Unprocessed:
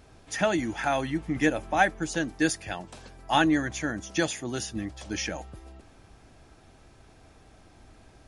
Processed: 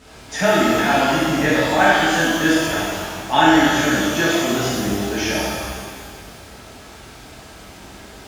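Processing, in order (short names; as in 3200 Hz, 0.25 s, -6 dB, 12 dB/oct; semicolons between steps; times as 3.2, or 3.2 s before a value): HPF 51 Hz; bell 68 Hz -3.5 dB 1.9 oct; in parallel at +1 dB: compressor, threshold -33 dBFS, peak gain reduction 16 dB; on the sum: requantised 8-bit, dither triangular; air absorption 74 m; shimmer reverb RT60 1.7 s, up +12 st, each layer -8 dB, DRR -10 dB; gain -2 dB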